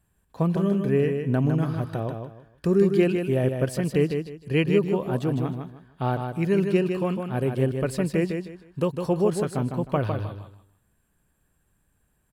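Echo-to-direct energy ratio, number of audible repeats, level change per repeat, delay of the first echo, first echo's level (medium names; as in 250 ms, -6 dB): -5.5 dB, 3, -11.5 dB, 155 ms, -6.0 dB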